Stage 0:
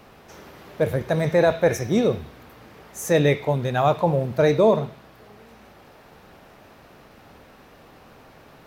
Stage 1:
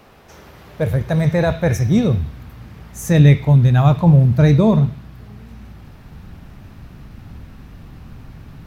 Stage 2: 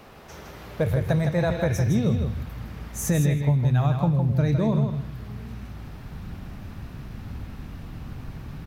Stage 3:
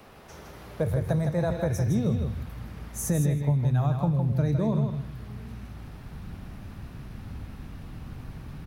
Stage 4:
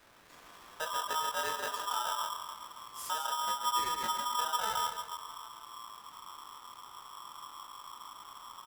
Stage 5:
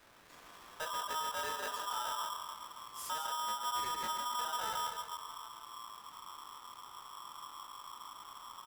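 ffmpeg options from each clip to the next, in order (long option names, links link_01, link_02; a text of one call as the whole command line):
ffmpeg -i in.wav -af "asubboost=boost=12:cutoff=150,volume=1.5dB" out.wav
ffmpeg -i in.wav -filter_complex "[0:a]acompressor=threshold=-20dB:ratio=6,asplit=2[link_01][link_02];[link_02]aecho=0:1:160|320|480:0.473|0.071|0.0106[link_03];[link_01][link_03]amix=inputs=2:normalize=0" out.wav
ffmpeg -i in.wav -filter_complex "[0:a]acrossover=split=160|1600|4100[link_01][link_02][link_03][link_04];[link_03]acompressor=threshold=-53dB:ratio=6[link_05];[link_04]aexciter=amount=1.7:drive=1.5:freq=9500[link_06];[link_01][link_02][link_05][link_06]amix=inputs=4:normalize=0,volume=-3dB" out.wav
ffmpeg -i in.wav -filter_complex "[0:a]asplit=2[link_01][link_02];[link_02]adelay=138,lowpass=frequency=2000:poles=1,volume=-9dB,asplit=2[link_03][link_04];[link_04]adelay=138,lowpass=frequency=2000:poles=1,volume=0.54,asplit=2[link_05][link_06];[link_06]adelay=138,lowpass=frequency=2000:poles=1,volume=0.54,asplit=2[link_07][link_08];[link_08]adelay=138,lowpass=frequency=2000:poles=1,volume=0.54,asplit=2[link_09][link_10];[link_10]adelay=138,lowpass=frequency=2000:poles=1,volume=0.54,asplit=2[link_11][link_12];[link_12]adelay=138,lowpass=frequency=2000:poles=1,volume=0.54[link_13];[link_01][link_03][link_05][link_07][link_09][link_11][link_13]amix=inputs=7:normalize=0,flanger=delay=19:depth=5:speed=1.7,aeval=exprs='val(0)*sgn(sin(2*PI*1100*n/s))':channel_layout=same,volume=-7.5dB" out.wav
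ffmpeg -i in.wav -af "asoftclip=type=tanh:threshold=-31.5dB,volume=-1dB" out.wav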